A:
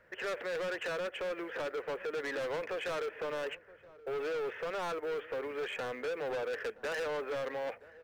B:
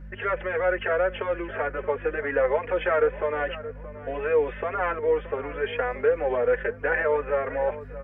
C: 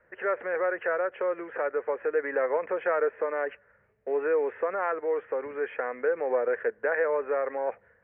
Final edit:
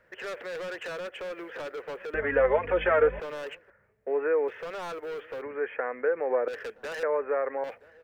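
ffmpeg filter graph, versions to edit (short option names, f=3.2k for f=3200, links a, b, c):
-filter_complex "[2:a]asplit=3[a][b][c];[0:a]asplit=5[d][e][f][g][h];[d]atrim=end=2.142[i];[1:a]atrim=start=2.138:end=3.202[j];[e]atrim=start=3.198:end=3.702[k];[a]atrim=start=3.698:end=4.482[l];[f]atrim=start=4.478:end=5.422[m];[b]atrim=start=5.418:end=6.482[n];[g]atrim=start=6.478:end=7.032[o];[c]atrim=start=7.028:end=7.642[p];[h]atrim=start=7.638[q];[i][j]acrossfade=d=0.004:c1=hsin:c2=hsin[r];[r][k]acrossfade=d=0.004:c1=hsin:c2=hsin[s];[s][l]acrossfade=d=0.004:c1=hsin:c2=hsin[t];[t][m]acrossfade=d=0.004:c1=hsin:c2=hsin[u];[u][n]acrossfade=d=0.004:c1=hsin:c2=hsin[v];[v][o]acrossfade=d=0.004:c1=hsin:c2=hsin[w];[w][p]acrossfade=d=0.004:c1=hsin:c2=hsin[x];[x][q]acrossfade=d=0.004:c1=hsin:c2=hsin"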